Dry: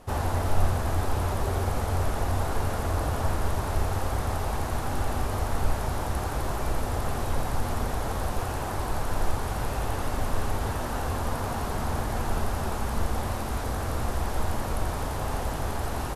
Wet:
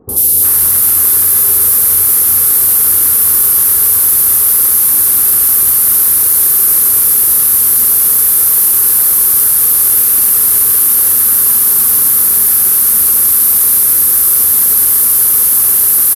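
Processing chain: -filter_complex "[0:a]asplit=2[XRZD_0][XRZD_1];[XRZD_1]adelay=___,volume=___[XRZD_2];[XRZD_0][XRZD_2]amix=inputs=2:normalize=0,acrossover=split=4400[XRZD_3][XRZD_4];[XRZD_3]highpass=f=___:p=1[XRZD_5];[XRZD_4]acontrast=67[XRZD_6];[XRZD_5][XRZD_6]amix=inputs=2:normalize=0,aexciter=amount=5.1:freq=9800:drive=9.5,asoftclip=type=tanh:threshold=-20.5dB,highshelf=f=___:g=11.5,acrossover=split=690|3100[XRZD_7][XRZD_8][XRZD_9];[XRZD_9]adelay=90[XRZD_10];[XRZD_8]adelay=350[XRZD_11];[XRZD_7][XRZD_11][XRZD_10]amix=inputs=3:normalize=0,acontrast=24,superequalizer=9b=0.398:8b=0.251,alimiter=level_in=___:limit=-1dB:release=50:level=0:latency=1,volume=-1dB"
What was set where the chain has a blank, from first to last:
44, -14dB, 350, 2800, 11dB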